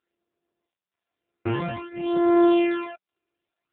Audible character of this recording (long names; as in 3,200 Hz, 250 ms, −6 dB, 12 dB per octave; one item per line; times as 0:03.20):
a buzz of ramps at a fixed pitch in blocks of 128 samples
tremolo triangle 0.92 Hz, depth 95%
phaser sweep stages 12, 0.54 Hz, lowest notch 180–2,700 Hz
AMR narrowband